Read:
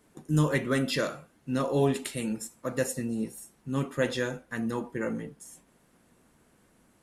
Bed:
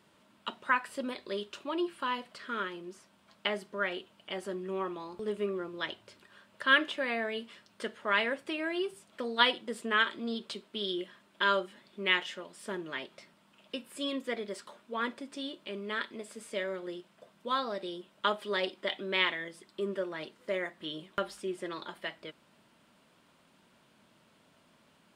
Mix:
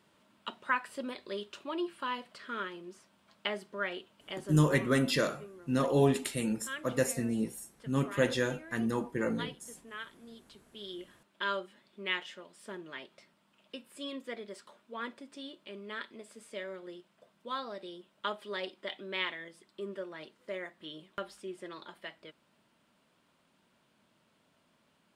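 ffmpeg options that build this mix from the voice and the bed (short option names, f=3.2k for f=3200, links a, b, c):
-filter_complex "[0:a]adelay=4200,volume=-0.5dB[a];[1:a]volume=8dB,afade=t=out:st=4.32:d=0.58:silence=0.199526,afade=t=in:st=10.53:d=0.67:silence=0.298538[b];[a][b]amix=inputs=2:normalize=0"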